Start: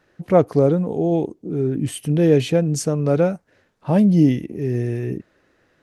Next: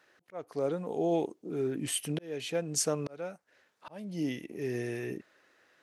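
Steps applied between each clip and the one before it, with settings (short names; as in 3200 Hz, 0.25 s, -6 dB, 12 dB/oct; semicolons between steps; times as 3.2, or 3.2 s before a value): HPF 1000 Hz 6 dB/oct; auto swell 0.74 s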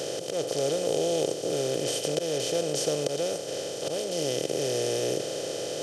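per-bin compression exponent 0.2; ten-band EQ 125 Hz +3 dB, 250 Hz -9 dB, 500 Hz +8 dB, 1000 Hz -7 dB, 2000 Hz -4 dB, 4000 Hz +8 dB, 8000 Hz -5 dB; gain -4.5 dB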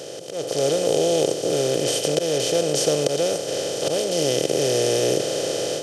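AGC gain up to 11.5 dB; gain -3 dB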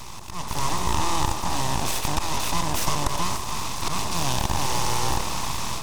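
full-wave rectifier; delay with a stepping band-pass 0.148 s, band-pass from 500 Hz, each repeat 1.4 oct, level -4 dB; gain -1 dB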